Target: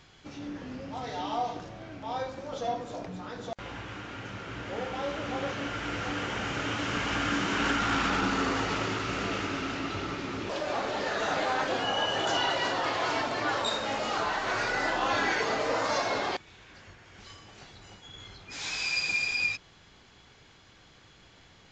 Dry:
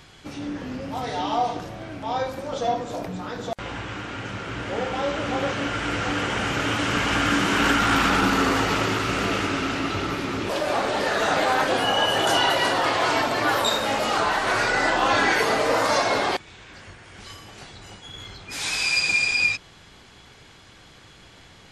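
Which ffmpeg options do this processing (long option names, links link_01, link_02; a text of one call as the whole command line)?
ffmpeg -i in.wav -af "aresample=16000,aresample=44100,volume=-7.5dB" out.wav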